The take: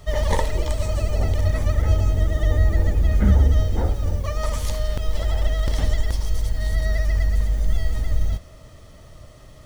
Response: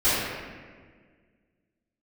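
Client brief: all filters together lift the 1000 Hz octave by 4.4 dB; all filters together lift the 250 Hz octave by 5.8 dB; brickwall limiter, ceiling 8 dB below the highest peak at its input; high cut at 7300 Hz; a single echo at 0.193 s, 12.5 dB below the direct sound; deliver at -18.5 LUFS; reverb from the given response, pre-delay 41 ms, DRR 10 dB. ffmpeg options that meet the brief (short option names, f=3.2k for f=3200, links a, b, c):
-filter_complex "[0:a]lowpass=7.3k,equalizer=f=250:t=o:g=7.5,equalizer=f=1k:t=o:g=5,alimiter=limit=-13dB:level=0:latency=1,aecho=1:1:193:0.237,asplit=2[a][b];[1:a]atrim=start_sample=2205,adelay=41[c];[b][c]afir=irnorm=-1:irlink=0,volume=-27.5dB[d];[a][d]amix=inputs=2:normalize=0,volume=6dB"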